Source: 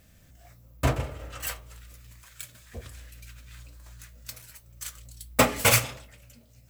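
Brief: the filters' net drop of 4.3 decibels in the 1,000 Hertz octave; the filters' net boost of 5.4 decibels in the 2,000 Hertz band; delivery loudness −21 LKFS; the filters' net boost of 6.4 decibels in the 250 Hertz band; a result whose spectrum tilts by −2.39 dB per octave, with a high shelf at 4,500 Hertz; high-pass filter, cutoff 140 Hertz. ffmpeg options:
ffmpeg -i in.wav -af "highpass=140,equalizer=frequency=250:width_type=o:gain=8,equalizer=frequency=1000:width_type=o:gain=-9,equalizer=frequency=2000:width_type=o:gain=7.5,highshelf=frequency=4500:gain=5,volume=1.5dB" out.wav

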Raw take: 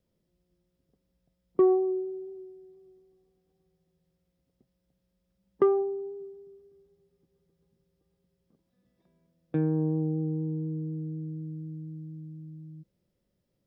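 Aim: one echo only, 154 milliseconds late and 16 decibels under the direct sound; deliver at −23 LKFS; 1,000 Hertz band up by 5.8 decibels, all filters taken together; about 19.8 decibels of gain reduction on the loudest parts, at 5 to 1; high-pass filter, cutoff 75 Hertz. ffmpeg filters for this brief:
ffmpeg -i in.wav -af "highpass=75,equalizer=frequency=1000:width_type=o:gain=8,acompressor=threshold=-39dB:ratio=5,aecho=1:1:154:0.158,volume=19.5dB" out.wav

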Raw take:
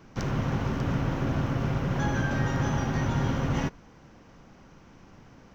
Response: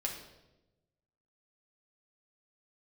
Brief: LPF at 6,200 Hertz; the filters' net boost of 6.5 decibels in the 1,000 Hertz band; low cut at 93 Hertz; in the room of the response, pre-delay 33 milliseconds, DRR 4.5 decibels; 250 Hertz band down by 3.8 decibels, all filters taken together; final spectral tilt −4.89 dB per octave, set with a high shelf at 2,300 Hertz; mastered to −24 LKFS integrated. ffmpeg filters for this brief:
-filter_complex "[0:a]highpass=93,lowpass=6200,equalizer=frequency=250:width_type=o:gain=-5.5,equalizer=frequency=1000:width_type=o:gain=7.5,highshelf=frequency=2300:gain=4.5,asplit=2[link_01][link_02];[1:a]atrim=start_sample=2205,adelay=33[link_03];[link_02][link_03]afir=irnorm=-1:irlink=0,volume=-6.5dB[link_04];[link_01][link_04]amix=inputs=2:normalize=0,volume=3dB"

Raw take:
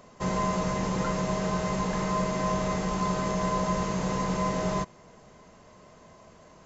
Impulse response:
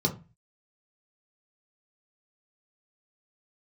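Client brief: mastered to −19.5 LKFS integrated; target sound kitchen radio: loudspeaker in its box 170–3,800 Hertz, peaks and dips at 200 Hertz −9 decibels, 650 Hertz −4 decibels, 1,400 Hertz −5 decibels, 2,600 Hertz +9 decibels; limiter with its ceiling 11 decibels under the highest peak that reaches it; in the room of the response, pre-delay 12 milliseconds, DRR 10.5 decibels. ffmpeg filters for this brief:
-filter_complex "[0:a]alimiter=level_in=2.5dB:limit=-24dB:level=0:latency=1,volume=-2.5dB,asplit=2[link_01][link_02];[1:a]atrim=start_sample=2205,adelay=12[link_03];[link_02][link_03]afir=irnorm=-1:irlink=0,volume=-19dB[link_04];[link_01][link_04]amix=inputs=2:normalize=0,highpass=170,equalizer=frequency=200:width_type=q:width=4:gain=-9,equalizer=frequency=650:width_type=q:width=4:gain=-4,equalizer=frequency=1400:width_type=q:width=4:gain=-5,equalizer=frequency=2600:width_type=q:width=4:gain=9,lowpass=frequency=3800:width=0.5412,lowpass=frequency=3800:width=1.3066,volume=17.5dB"

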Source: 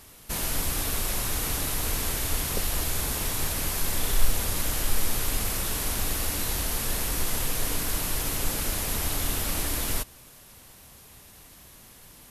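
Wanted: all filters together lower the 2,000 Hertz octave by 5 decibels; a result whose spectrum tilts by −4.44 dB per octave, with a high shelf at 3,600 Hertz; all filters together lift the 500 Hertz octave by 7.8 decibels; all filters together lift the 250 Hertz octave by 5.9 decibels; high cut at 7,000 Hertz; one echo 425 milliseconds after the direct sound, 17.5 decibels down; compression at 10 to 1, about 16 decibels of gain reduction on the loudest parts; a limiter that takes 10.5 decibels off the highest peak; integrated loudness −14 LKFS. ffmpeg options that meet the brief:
ffmpeg -i in.wav -af "lowpass=7000,equalizer=frequency=250:width_type=o:gain=5,equalizer=frequency=500:width_type=o:gain=8.5,equalizer=frequency=2000:width_type=o:gain=-6,highshelf=frequency=3600:gain=-3.5,acompressor=threshold=-28dB:ratio=10,alimiter=level_in=5dB:limit=-24dB:level=0:latency=1,volume=-5dB,aecho=1:1:425:0.133,volume=26dB" out.wav

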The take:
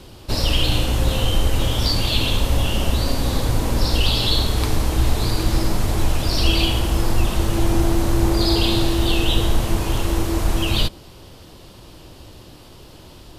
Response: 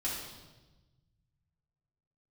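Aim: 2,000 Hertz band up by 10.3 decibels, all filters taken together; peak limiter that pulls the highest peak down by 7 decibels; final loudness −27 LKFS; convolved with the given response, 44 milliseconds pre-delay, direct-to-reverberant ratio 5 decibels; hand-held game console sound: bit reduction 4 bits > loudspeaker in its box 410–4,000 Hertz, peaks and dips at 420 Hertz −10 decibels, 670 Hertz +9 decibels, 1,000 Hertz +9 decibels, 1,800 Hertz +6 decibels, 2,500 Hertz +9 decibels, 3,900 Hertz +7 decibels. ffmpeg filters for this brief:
-filter_complex "[0:a]equalizer=frequency=2000:width_type=o:gain=4,alimiter=limit=-10dB:level=0:latency=1,asplit=2[link_01][link_02];[1:a]atrim=start_sample=2205,adelay=44[link_03];[link_02][link_03]afir=irnorm=-1:irlink=0,volume=-9dB[link_04];[link_01][link_04]amix=inputs=2:normalize=0,acrusher=bits=3:mix=0:aa=0.000001,highpass=410,equalizer=frequency=420:width_type=q:width=4:gain=-10,equalizer=frequency=670:width_type=q:width=4:gain=9,equalizer=frequency=1000:width_type=q:width=4:gain=9,equalizer=frequency=1800:width_type=q:width=4:gain=6,equalizer=frequency=2500:width_type=q:width=4:gain=9,equalizer=frequency=3900:width_type=q:width=4:gain=7,lowpass=frequency=4000:width=0.5412,lowpass=frequency=4000:width=1.3066,volume=-9dB"

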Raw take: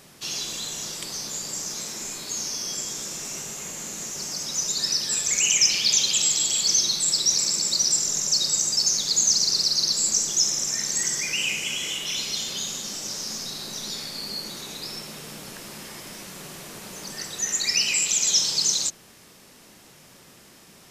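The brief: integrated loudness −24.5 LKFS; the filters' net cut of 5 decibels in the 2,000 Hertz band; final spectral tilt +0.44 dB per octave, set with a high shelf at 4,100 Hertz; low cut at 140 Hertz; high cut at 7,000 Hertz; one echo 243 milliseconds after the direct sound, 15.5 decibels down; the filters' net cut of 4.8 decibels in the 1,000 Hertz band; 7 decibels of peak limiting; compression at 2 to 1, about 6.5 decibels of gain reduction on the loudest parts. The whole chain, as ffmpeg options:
ffmpeg -i in.wav -af "highpass=140,lowpass=7000,equalizer=frequency=1000:width_type=o:gain=-4.5,equalizer=frequency=2000:width_type=o:gain=-7,highshelf=frequency=4100:gain=3,acompressor=threshold=-28dB:ratio=2,alimiter=limit=-21.5dB:level=0:latency=1,aecho=1:1:243:0.168,volume=5dB" out.wav

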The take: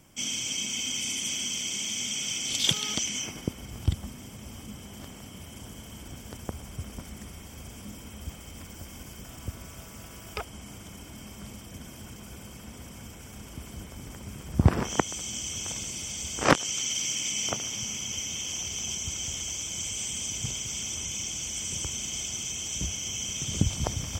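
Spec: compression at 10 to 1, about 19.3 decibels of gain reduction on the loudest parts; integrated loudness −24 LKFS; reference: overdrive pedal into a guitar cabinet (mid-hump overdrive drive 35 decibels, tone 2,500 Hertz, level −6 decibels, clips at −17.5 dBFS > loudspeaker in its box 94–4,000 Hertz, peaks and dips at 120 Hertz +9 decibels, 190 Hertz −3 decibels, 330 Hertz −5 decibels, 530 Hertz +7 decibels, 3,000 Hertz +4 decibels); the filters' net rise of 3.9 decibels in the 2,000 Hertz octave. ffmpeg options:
ffmpeg -i in.wav -filter_complex "[0:a]equalizer=frequency=2000:width_type=o:gain=4,acompressor=threshold=-34dB:ratio=10,asplit=2[link_01][link_02];[link_02]highpass=frequency=720:poles=1,volume=35dB,asoftclip=type=tanh:threshold=-17.5dB[link_03];[link_01][link_03]amix=inputs=2:normalize=0,lowpass=frequency=2500:poles=1,volume=-6dB,highpass=94,equalizer=frequency=120:width_type=q:width=4:gain=9,equalizer=frequency=190:width_type=q:width=4:gain=-3,equalizer=frequency=330:width_type=q:width=4:gain=-5,equalizer=frequency=530:width_type=q:width=4:gain=7,equalizer=frequency=3000:width_type=q:width=4:gain=4,lowpass=frequency=4000:width=0.5412,lowpass=frequency=4000:width=1.3066,volume=3.5dB" out.wav

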